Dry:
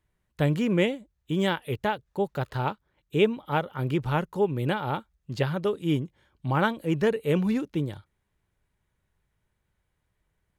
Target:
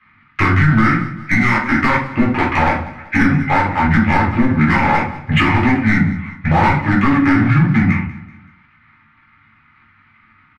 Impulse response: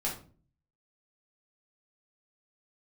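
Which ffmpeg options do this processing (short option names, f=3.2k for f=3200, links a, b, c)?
-filter_complex "[0:a]aeval=exprs='if(lt(val(0),0),0.447*val(0),val(0))':c=same,highpass=190,equalizer=f=650:t=q:w=4:g=-6,equalizer=f=950:t=q:w=4:g=-4,equalizer=f=2.1k:t=q:w=4:g=5,equalizer=f=3.3k:t=q:w=4:g=9,lowpass=f=4.9k:w=0.5412,lowpass=f=4.9k:w=1.3066,acrossover=split=470|1800[a][b][c];[b]aeval=exprs='sgn(val(0))*max(abs(val(0))-0.00668,0)':c=same[d];[a][d][c]amix=inputs=3:normalize=0,asetrate=27781,aresample=44100,atempo=1.5874,acontrast=66,asplit=2[e][f];[f]acrusher=bits=4:mix=0:aa=0.5,volume=-12dB[g];[e][g]amix=inputs=2:normalize=0,acompressor=threshold=-34dB:ratio=4,asplit=2[h][i];[i]highpass=f=720:p=1,volume=18dB,asoftclip=type=tanh:threshold=-19dB[j];[h][j]amix=inputs=2:normalize=0,lowpass=f=1.3k:p=1,volume=-6dB,equalizer=f=470:t=o:w=1.3:g=-10,aecho=1:1:190|380|570:0.112|0.0471|0.0198[k];[1:a]atrim=start_sample=2205[l];[k][l]afir=irnorm=-1:irlink=0,alimiter=level_in=21.5dB:limit=-1dB:release=50:level=0:latency=1,volume=-3dB"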